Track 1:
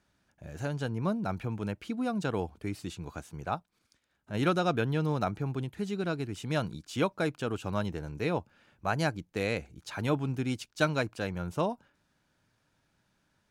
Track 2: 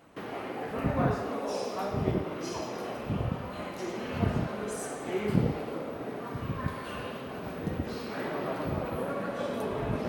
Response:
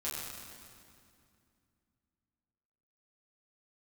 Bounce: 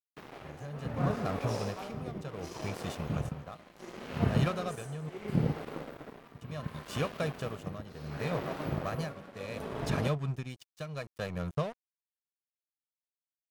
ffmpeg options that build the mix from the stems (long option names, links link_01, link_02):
-filter_complex "[0:a]aecho=1:1:1.7:0.64,acompressor=threshold=-31dB:ratio=3,volume=2dB,asplit=3[link_01][link_02][link_03];[link_01]atrim=end=5.09,asetpts=PTS-STARTPTS,afade=type=out:start_time=5.086:duration=0.004:curve=hsin[link_04];[link_02]atrim=start=5.09:end=6.41,asetpts=PTS-STARTPTS,volume=0[link_05];[link_03]atrim=start=6.41,asetpts=PTS-STARTPTS,afade=type=in:duration=0.004:curve=hsin[link_06];[link_04][link_05][link_06]concat=n=3:v=0:a=1[link_07];[1:a]volume=-0.5dB[link_08];[link_07][link_08]amix=inputs=2:normalize=0,equalizer=frequency=150:width=4.5:gain=7.5,aeval=exprs='sgn(val(0))*max(abs(val(0))-0.0112,0)':channel_layout=same,tremolo=f=0.7:d=0.76"